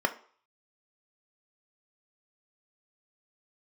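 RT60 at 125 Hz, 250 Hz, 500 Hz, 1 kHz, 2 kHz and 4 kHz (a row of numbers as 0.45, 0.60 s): 0.30, 0.35, 0.45, 0.50, 0.45, 0.45 s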